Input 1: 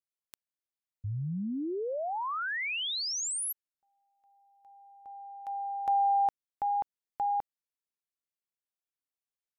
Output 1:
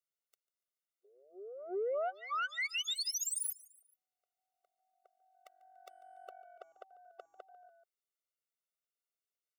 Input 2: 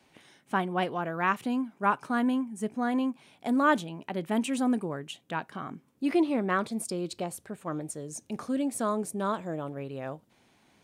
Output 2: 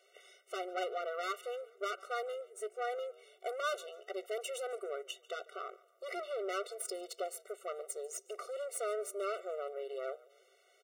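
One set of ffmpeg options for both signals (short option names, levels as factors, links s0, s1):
-filter_complex "[0:a]asplit=2[s0][s1];[s1]acompressor=threshold=0.0178:ratio=6:release=647,volume=0.708[s2];[s0][s2]amix=inputs=2:normalize=0,aeval=exprs='(tanh(25.1*val(0)+0.7)-tanh(0.7))/25.1':c=same,asplit=4[s3][s4][s5][s6];[s4]adelay=144,afreqshift=-46,volume=0.0794[s7];[s5]adelay=288,afreqshift=-92,volume=0.0389[s8];[s6]adelay=432,afreqshift=-138,volume=0.0191[s9];[s3][s7][s8][s9]amix=inputs=4:normalize=0,afftfilt=real='re*eq(mod(floor(b*sr/1024/380),2),1)':imag='im*eq(mod(floor(b*sr/1024/380),2),1)':win_size=1024:overlap=0.75"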